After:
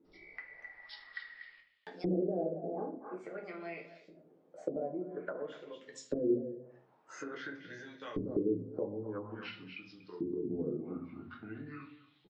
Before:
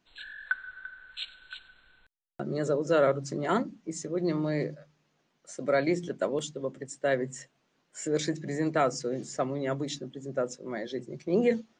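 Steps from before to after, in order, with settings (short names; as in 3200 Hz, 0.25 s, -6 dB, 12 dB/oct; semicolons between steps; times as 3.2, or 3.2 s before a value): speed glide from 134% -> 58%; low shelf 500 Hz +9 dB; compressor 3:1, threshold -32 dBFS, peak gain reduction 14.5 dB; speakerphone echo 0.24 s, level -12 dB; LFO band-pass saw up 0.49 Hz 300–4200 Hz; shoebox room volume 34 m³, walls mixed, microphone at 0.54 m; treble ducked by the level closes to 360 Hz, closed at -37.5 dBFS; gain +6 dB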